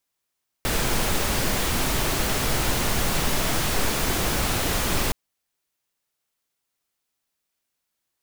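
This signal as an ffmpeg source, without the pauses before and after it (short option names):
-f lavfi -i "anoisesrc=c=pink:a=0.363:d=4.47:r=44100:seed=1"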